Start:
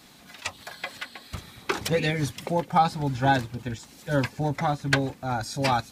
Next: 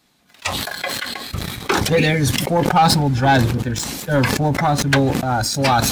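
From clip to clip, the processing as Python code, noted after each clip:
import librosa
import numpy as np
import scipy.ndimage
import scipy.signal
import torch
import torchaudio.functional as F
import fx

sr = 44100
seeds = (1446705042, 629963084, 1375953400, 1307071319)

y = fx.noise_reduce_blind(x, sr, reduce_db=6)
y = fx.leveller(y, sr, passes=2)
y = fx.sustainer(y, sr, db_per_s=30.0)
y = F.gain(torch.from_numpy(y), 1.0).numpy()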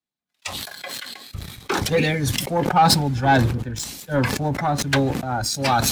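y = fx.band_widen(x, sr, depth_pct=70)
y = F.gain(torch.from_numpy(y), -4.0).numpy()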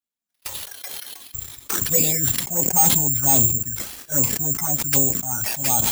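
y = fx.env_flanger(x, sr, rest_ms=4.2, full_db=-16.0)
y = 10.0 ** (-11.5 / 20.0) * (np.abs((y / 10.0 ** (-11.5 / 20.0) + 3.0) % 4.0 - 2.0) - 1.0)
y = (np.kron(y[::6], np.eye(6)[0]) * 6)[:len(y)]
y = F.gain(torch.from_numpy(y), -5.5).numpy()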